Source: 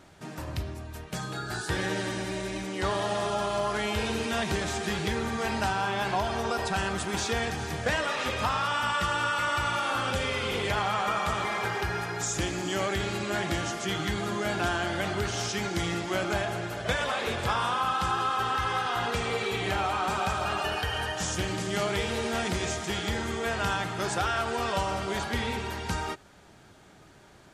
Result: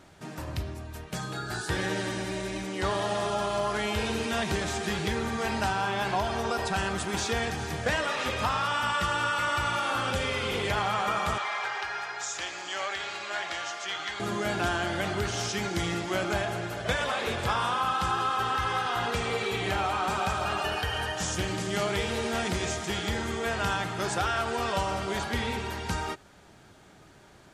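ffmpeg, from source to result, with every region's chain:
-filter_complex "[0:a]asettb=1/sr,asplit=3[a][b][c];[a]atrim=end=11.384[d];[b]atrim=start=11.38:end=14.2,asetpts=PTS-STARTPTS,afade=t=in:d=0.004:c=qsin,afade=t=out:st=2.816:d=0.004:c=qsin,highpass=40,acrossover=split=590 7500:gain=0.0631 1 0.0708[e][f][g];[e][f][g]amix=inputs=3:normalize=0[h];[c]atrim=start=14.196[i];[d][h]acrossfade=d=0.004:c1=hsin:c2=qsin[j];[j][i]acrossfade=d=0.004:c1=qsin:c2=hsin"

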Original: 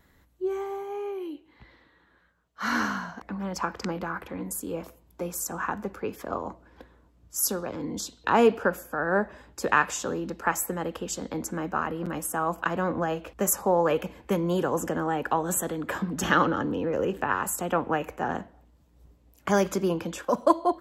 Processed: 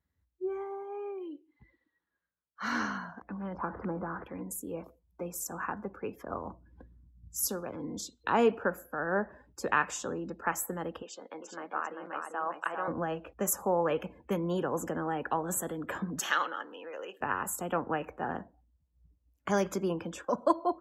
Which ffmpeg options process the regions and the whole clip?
-filter_complex "[0:a]asettb=1/sr,asplit=3[a][b][c];[a]atrim=end=3.544[d];[b]atrim=start=3.54:end=4.24,asetpts=PTS-STARTPTS,afade=t=in:d=0.004:c=qsin,afade=t=out:st=0.696:d=0.004:c=qsin,aeval=exprs='val(0)+0.5*0.0188*sgn(val(0))':c=same,lowpass=1.3k[e];[c]atrim=start=4.236[f];[d][e]acrossfade=d=0.004:c1=hsin:c2=qsin[g];[g][f]acrossfade=d=0.004:c1=qsin:c2=hsin,asettb=1/sr,asplit=3[h][i][j];[h]atrim=end=6.154[k];[i]atrim=start=6.15:end=7.47,asetpts=PTS-STARTPTS,afade=t=in:d=0.004:c=qsin,afade=t=out:st=1.316:d=0.004:c=qsin,asubboost=boost=10:cutoff=220,acrusher=bits=8:mode=log:mix=0:aa=0.000001[l];[j]atrim=start=7.466[m];[k][l]acrossfade=d=0.004:c1=hsin:c2=qsin[n];[n][m]acrossfade=d=0.004:c1=qsin:c2=hsin,asettb=1/sr,asplit=3[o][p][q];[o]atrim=end=11.024[r];[p]atrim=start=11.02:end=12.88,asetpts=PTS-STARTPTS,afade=t=in:d=0.004:c=qsin,afade=t=out:st=1.856:d=0.004:c=qsin,highpass=530,lowpass=4.4k,aecho=1:1:396:0.596,atrim=end_sample=82026[s];[q]atrim=start=12.876[t];[r][s]acrossfade=d=0.004:c1=hsin:c2=qsin[u];[u][t]acrossfade=d=0.004:c1=qsin:c2=hsin,asettb=1/sr,asplit=3[v][w][x];[v]atrim=end=16.194[y];[w]atrim=start=16.19:end=17.21,asetpts=PTS-STARTPTS,afade=t=in:d=0.004:c=qsin,afade=t=out:st=1.016:d=0.004:c=qsin,highpass=590,tiltshelf=f=1.5k:g=-5[z];[x]atrim=start=17.206[aa];[y][z]acrossfade=d=0.004:c1=hsin:c2=qsin[ab];[ab][aa]acrossfade=d=0.004:c1=qsin:c2=hsin,highpass=56,afftdn=nr=20:nf=-48,volume=-5.5dB"

